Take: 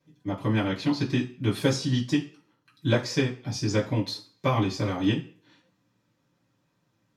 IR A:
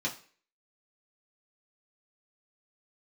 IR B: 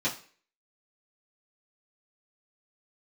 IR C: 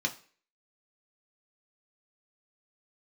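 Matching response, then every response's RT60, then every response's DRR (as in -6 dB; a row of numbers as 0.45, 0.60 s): B; not exponential, not exponential, not exponential; -4.0, -8.5, 2.0 dB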